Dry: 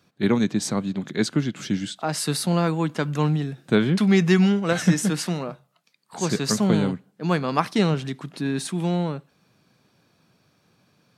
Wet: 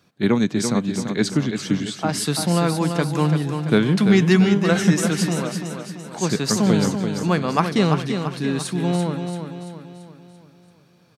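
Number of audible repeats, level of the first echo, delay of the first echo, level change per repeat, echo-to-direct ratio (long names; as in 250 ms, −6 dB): 5, −7.0 dB, 338 ms, −6.0 dB, −6.0 dB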